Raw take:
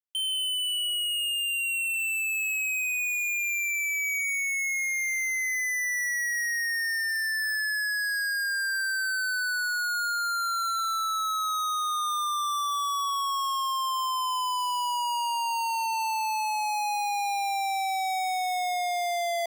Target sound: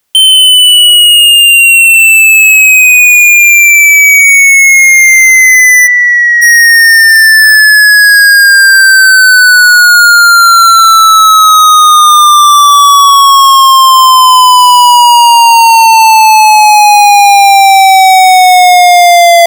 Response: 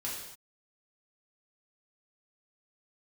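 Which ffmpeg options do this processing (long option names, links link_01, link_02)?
-filter_complex "[0:a]asplit=3[link_01][link_02][link_03];[link_01]afade=type=out:start_time=5.86:duration=0.02[link_04];[link_02]lowpass=1400,afade=type=in:start_time=5.86:duration=0.02,afade=type=out:start_time=6.41:duration=0.02[link_05];[link_03]afade=type=in:start_time=6.41:duration=0.02[link_06];[link_04][link_05][link_06]amix=inputs=3:normalize=0,alimiter=level_in=34.5dB:limit=-1dB:release=50:level=0:latency=1,volume=-1dB"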